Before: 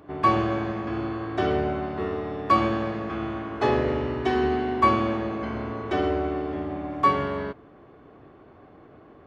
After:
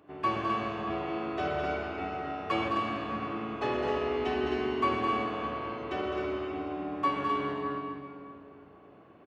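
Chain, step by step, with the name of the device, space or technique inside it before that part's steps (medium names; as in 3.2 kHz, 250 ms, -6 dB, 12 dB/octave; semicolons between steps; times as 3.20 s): stadium PA (high-pass 140 Hz 6 dB/octave; peaking EQ 2.7 kHz +6.5 dB 0.33 oct; loudspeakers at several distances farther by 72 m -6 dB, 89 m -5 dB; reverberation RT60 2.8 s, pre-delay 74 ms, DRR 2.5 dB); 0.89–2.68 s: doubling 12 ms -2.5 dB; trim -9 dB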